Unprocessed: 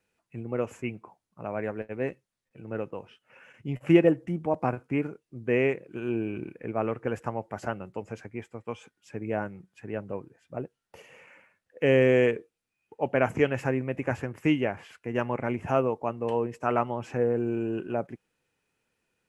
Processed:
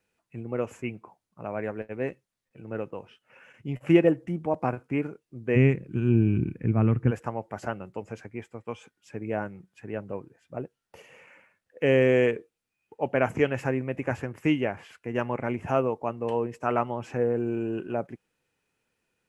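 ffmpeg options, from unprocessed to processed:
ffmpeg -i in.wav -filter_complex "[0:a]asplit=3[link_01][link_02][link_03];[link_01]afade=type=out:start_time=5.55:duration=0.02[link_04];[link_02]asubboost=boost=11.5:cutoff=170,afade=type=in:start_time=5.55:duration=0.02,afade=type=out:start_time=7.1:duration=0.02[link_05];[link_03]afade=type=in:start_time=7.1:duration=0.02[link_06];[link_04][link_05][link_06]amix=inputs=3:normalize=0" out.wav

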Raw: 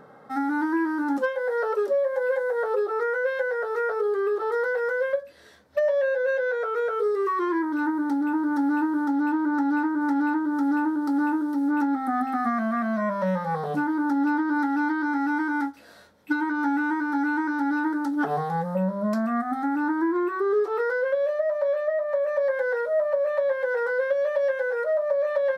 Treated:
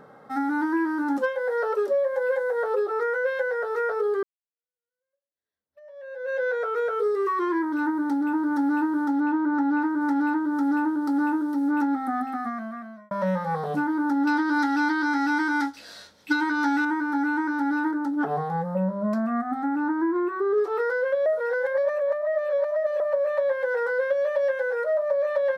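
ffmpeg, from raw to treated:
ffmpeg -i in.wav -filter_complex "[0:a]asettb=1/sr,asplit=3[link_01][link_02][link_03];[link_01]atrim=end=9.204[link_04];[link_02]atrim=start=9.2:end=9.82,asetpts=PTS-STARTPTS,afade=type=in:duration=0.004:curve=qsin,afade=type=out:start_time=0.616:duration=0.004:curve=qsin,aemphasis=mode=reproduction:type=50fm[link_05];[link_03]atrim=start=9.816[link_06];[link_04][link_05]acrossfade=duration=0.004:curve1=hsin:curve2=qsin[link_07];[link_07][link_06]acrossfade=duration=0.004:curve1=qsin:curve2=hsin,asettb=1/sr,asplit=3[link_08][link_09][link_10];[link_08]atrim=end=14.274[link_11];[link_09]atrim=start=14.27:end=16.85,asetpts=PTS-STARTPTS,afade=type=in:duration=0.004:curve=qsin,afade=type=out:start_time=2.576:duration=0.004:curve=qsin,equalizer=frequency=4800:width_type=o:width=2.1:gain=13.5[link_12];[link_10]atrim=start=16.846[link_13];[link_11][link_12]acrossfade=duration=0.004:curve1=hsin:curve2=qsin[link_14];[link_14][link_13]acrossfade=duration=0.004:curve1=qsin:curve2=hsin,asettb=1/sr,asplit=3[link_15][link_16][link_17];[link_15]atrim=end=17.914[link_18];[link_16]atrim=start=17.91:end=20.58,asetpts=PTS-STARTPTS,afade=type=in:duration=0.004:curve=qsin,afade=type=out:start_time=2.666:duration=0.004:curve=qsin,highshelf=frequency=2400:gain=-8.5[link_19];[link_17]atrim=start=20.576[link_20];[link_18][link_19]acrossfade=duration=0.004:curve1=hsin:curve2=qsin[link_21];[link_21][link_20]acrossfade=duration=0.004:curve1=qsin:curve2=hsin,asplit=5[link_22][link_23][link_24][link_25][link_26];[link_22]atrim=end=4.23,asetpts=PTS-STARTPTS,afade=type=out:start_time=4.226:duration=0.004:curve=hsin[link_27];[link_23]atrim=start=4.23:end=13.11,asetpts=PTS-STARTPTS,afade=type=in:duration=2.18:curve=exp,afade=type=out:start_time=7.69:duration=1.19[link_28];[link_24]atrim=start=13.11:end=21.262,asetpts=PTS-STARTPTS,afade=type=in:duration=0.004:curve=hsin[link_29];[link_25]atrim=start=21.258:end=23.002,asetpts=PTS-STARTPTS,areverse[link_30];[link_26]atrim=start=22.998[link_31];[link_27][link_28][link_29]concat=n=3:v=0:a=1[link_32];[link_32][link_30]acrossfade=duration=0.004:curve1=hsin:curve2=hsin[link_33];[link_33][link_31]acrossfade=duration=0.004:curve1=hsin:curve2=hsin" out.wav

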